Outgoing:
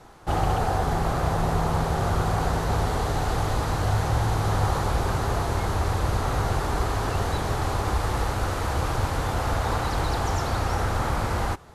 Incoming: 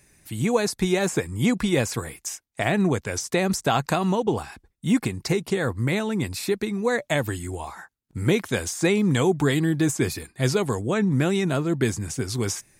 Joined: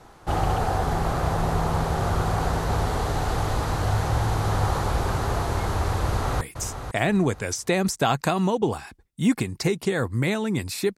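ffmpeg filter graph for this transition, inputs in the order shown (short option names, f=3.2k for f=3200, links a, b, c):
-filter_complex "[0:a]apad=whole_dur=10.97,atrim=end=10.97,atrim=end=6.412[a];[1:a]atrim=start=2.058:end=6.62[b];[a][b]acrossfade=d=0.004:c1=hsin:c2=hsin,asplit=2[c][d];[d]afade=t=in:st=6.05:d=0.01,afade=t=out:st=6.41:d=0.01,aecho=0:1:500|1000|1500:0.354813|0.0887033|0.0221758[e];[c][e]amix=inputs=2:normalize=0"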